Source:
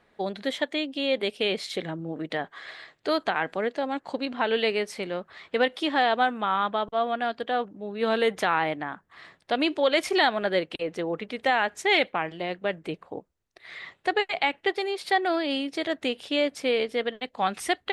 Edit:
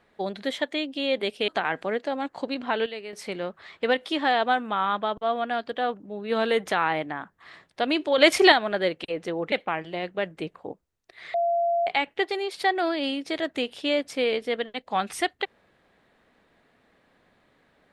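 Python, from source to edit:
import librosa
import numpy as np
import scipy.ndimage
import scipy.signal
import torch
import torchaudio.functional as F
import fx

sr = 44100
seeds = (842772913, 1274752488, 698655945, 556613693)

y = fx.edit(x, sr, fx.cut(start_s=1.48, length_s=1.71),
    fx.fade_down_up(start_s=4.3, length_s=0.81, db=-11.5, fade_s=0.27, curve='log'),
    fx.clip_gain(start_s=9.89, length_s=0.34, db=7.0),
    fx.cut(start_s=11.23, length_s=0.76),
    fx.bleep(start_s=13.81, length_s=0.53, hz=685.0, db=-20.5), tone=tone)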